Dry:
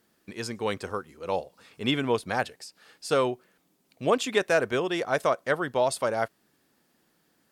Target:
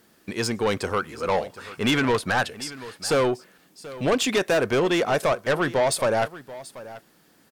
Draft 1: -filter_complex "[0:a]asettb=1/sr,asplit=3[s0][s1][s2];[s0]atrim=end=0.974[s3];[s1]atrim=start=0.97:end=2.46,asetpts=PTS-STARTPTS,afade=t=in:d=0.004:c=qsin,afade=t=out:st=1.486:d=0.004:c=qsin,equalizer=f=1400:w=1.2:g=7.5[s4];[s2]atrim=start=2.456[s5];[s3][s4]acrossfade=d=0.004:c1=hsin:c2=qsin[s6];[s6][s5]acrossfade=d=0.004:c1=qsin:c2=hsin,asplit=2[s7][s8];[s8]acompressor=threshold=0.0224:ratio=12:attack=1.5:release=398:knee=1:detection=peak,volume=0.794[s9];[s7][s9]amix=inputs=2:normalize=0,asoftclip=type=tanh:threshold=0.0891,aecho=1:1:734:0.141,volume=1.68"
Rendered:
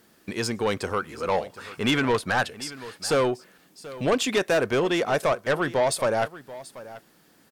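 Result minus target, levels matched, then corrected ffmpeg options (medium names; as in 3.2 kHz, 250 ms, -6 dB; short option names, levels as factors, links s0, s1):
compression: peak gain reduction +11 dB
-filter_complex "[0:a]asettb=1/sr,asplit=3[s0][s1][s2];[s0]atrim=end=0.974[s3];[s1]atrim=start=0.97:end=2.46,asetpts=PTS-STARTPTS,afade=t=in:d=0.004:c=qsin,afade=t=out:st=1.486:d=0.004:c=qsin,equalizer=f=1400:w=1.2:g=7.5[s4];[s2]atrim=start=2.456[s5];[s3][s4]acrossfade=d=0.004:c1=hsin:c2=qsin[s6];[s6][s5]acrossfade=d=0.004:c1=qsin:c2=hsin,asplit=2[s7][s8];[s8]acompressor=threshold=0.0891:ratio=12:attack=1.5:release=398:knee=1:detection=peak,volume=0.794[s9];[s7][s9]amix=inputs=2:normalize=0,asoftclip=type=tanh:threshold=0.0891,aecho=1:1:734:0.141,volume=1.68"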